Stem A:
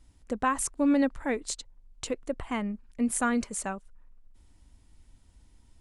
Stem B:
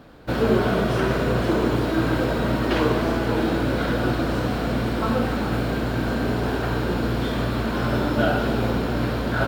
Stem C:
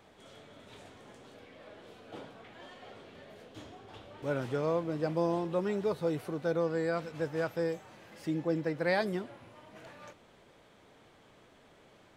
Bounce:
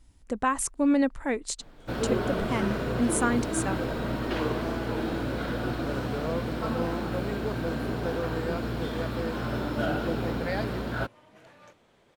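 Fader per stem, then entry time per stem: +1.0, -8.0, -3.0 dB; 0.00, 1.60, 1.60 s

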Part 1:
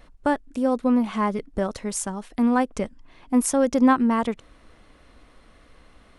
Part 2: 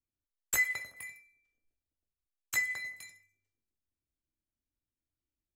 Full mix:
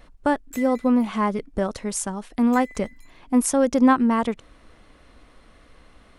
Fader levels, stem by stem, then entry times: +1.0, -10.0 dB; 0.00, 0.00 s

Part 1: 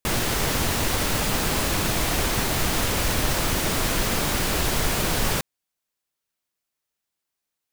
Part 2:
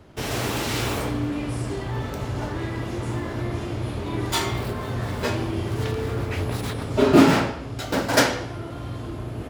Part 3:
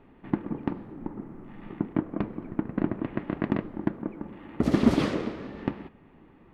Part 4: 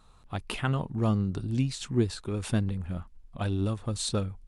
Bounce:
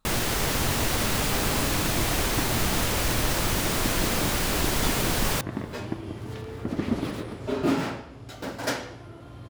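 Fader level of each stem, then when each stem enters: -2.0, -10.5, -6.5, -11.0 dB; 0.00, 0.50, 2.05, 0.00 s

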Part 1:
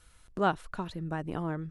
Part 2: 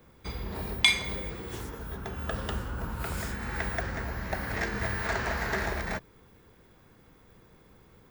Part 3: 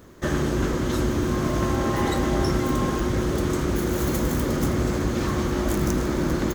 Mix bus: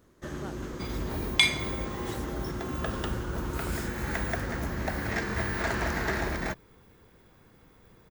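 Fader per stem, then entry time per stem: -18.0, 0.0, -13.5 dB; 0.00, 0.55, 0.00 s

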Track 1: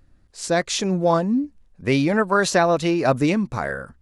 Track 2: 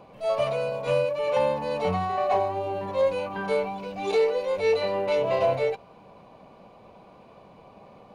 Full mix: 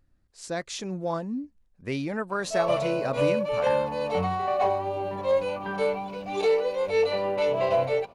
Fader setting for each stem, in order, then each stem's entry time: -11.0, -0.5 dB; 0.00, 2.30 s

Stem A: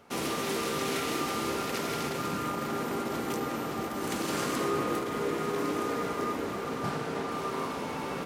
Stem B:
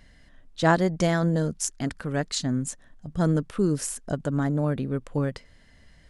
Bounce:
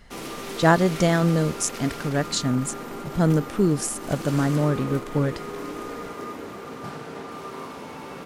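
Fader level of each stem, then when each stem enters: -3.0, +3.0 dB; 0.00, 0.00 s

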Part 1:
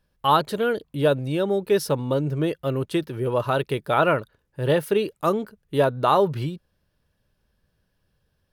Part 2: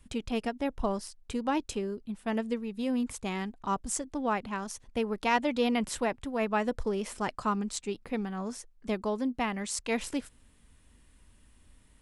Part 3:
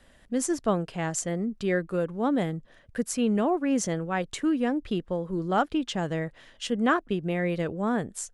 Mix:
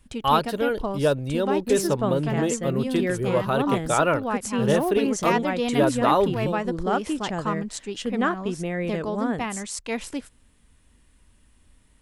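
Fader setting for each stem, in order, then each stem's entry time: -1.5, +1.5, -0.5 dB; 0.00, 0.00, 1.35 s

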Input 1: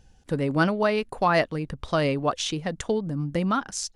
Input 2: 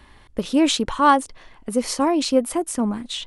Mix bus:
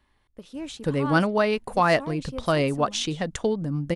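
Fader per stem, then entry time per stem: +1.0, -18.0 dB; 0.55, 0.00 s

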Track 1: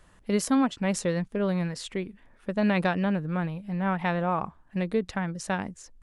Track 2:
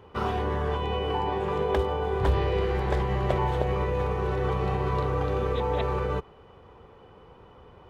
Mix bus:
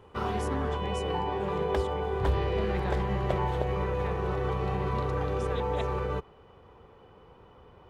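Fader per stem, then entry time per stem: -14.5, -3.0 dB; 0.00, 0.00 s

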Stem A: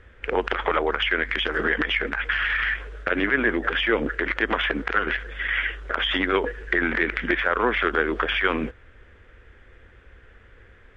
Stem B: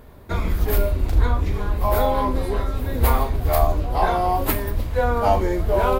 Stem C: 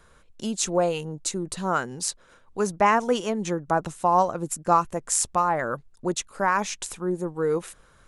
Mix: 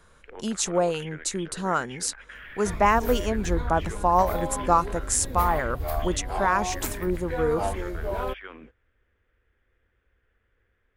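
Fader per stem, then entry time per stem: -20.0, -10.5, -0.5 dB; 0.00, 2.35, 0.00 s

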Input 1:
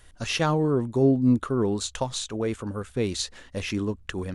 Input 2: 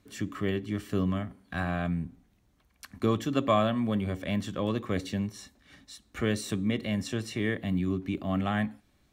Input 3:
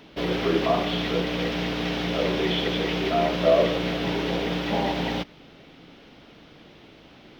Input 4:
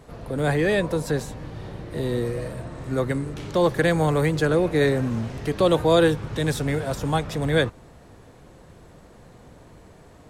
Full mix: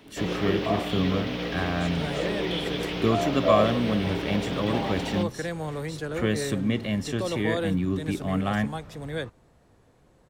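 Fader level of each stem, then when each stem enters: -17.0, +2.5, -4.5, -11.5 dB; 0.00, 0.00, 0.00, 1.60 s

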